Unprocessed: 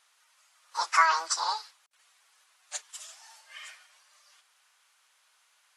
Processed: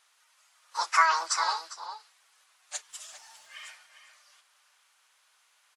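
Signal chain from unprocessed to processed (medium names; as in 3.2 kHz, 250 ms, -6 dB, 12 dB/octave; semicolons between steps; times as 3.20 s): 2.88–3.68 s: crackle 370 per s -56 dBFS; echo from a far wall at 69 m, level -9 dB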